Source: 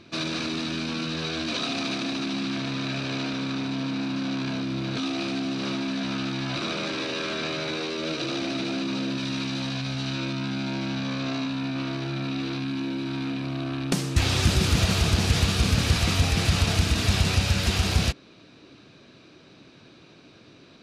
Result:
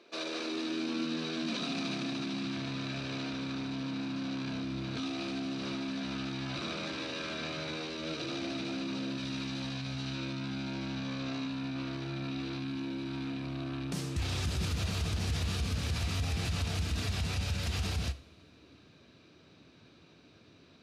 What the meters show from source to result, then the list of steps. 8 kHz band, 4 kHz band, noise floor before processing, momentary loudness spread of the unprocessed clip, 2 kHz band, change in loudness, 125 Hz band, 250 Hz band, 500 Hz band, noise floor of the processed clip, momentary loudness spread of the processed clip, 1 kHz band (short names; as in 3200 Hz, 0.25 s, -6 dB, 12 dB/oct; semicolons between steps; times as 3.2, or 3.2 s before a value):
-11.5 dB, -10.0 dB, -52 dBFS, 7 LU, -9.5 dB, -9.0 dB, -9.5 dB, -8.0 dB, -9.0 dB, -59 dBFS, 4 LU, -9.5 dB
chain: high-pass sweep 460 Hz -> 65 Hz, 0.26–3.03; limiter -16.5 dBFS, peak gain reduction 11.5 dB; two-slope reverb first 0.45 s, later 2.8 s, from -21 dB, DRR 12 dB; gain -8.5 dB